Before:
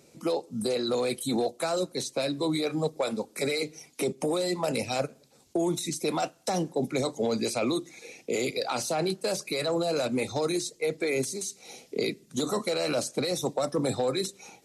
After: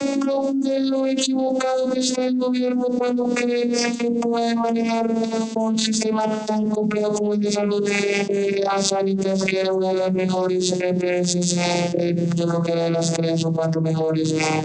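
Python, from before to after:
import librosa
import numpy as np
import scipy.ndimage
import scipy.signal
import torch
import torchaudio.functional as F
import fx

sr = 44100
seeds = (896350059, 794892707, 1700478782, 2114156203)

y = fx.vocoder_glide(x, sr, note=61, semitones=-10)
y = fx.env_flatten(y, sr, amount_pct=100)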